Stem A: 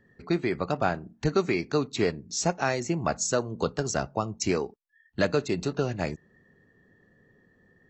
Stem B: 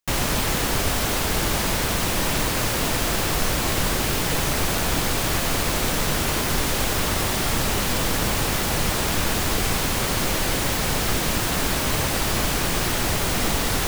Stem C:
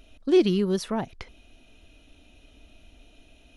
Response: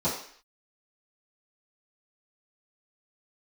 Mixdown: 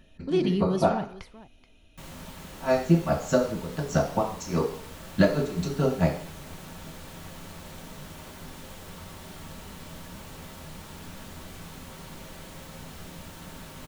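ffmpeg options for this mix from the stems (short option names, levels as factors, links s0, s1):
-filter_complex "[0:a]aeval=exprs='val(0)*pow(10,-19*(0.5-0.5*cos(2*PI*4.8*n/s))/20)':c=same,volume=1,asplit=3[s0][s1][s2];[s0]atrim=end=0.92,asetpts=PTS-STARTPTS,afade=t=out:st=0.916:d=0.004:c=hsin[s3];[s1]atrim=start=0.92:end=2.58,asetpts=PTS-STARTPTS,volume=0[s4];[s2]atrim=start=2.58,asetpts=PTS-STARTPTS,afade=t=in:d=0.004:c=hsin[s5];[s3][s4][s5]concat=n=3:v=0:a=1,asplit=2[s6][s7];[s7]volume=0.376[s8];[1:a]flanger=delay=9.9:depth=9.5:regen=-77:speed=0.72:shape=sinusoidal,adelay=1900,volume=0.126,asplit=2[s9][s10];[s10]volume=0.2[s11];[2:a]volume=0.562,asplit=4[s12][s13][s14][s15];[s13]volume=0.0891[s16];[s14]volume=0.158[s17];[s15]apad=whole_len=348385[s18];[s6][s18]sidechaincompress=threshold=0.00355:ratio=8:attack=16:release=1460[s19];[3:a]atrim=start_sample=2205[s20];[s8][s11][s16]amix=inputs=3:normalize=0[s21];[s21][s20]afir=irnorm=-1:irlink=0[s22];[s17]aecho=0:1:429:1[s23];[s19][s9][s12][s22][s23]amix=inputs=5:normalize=0"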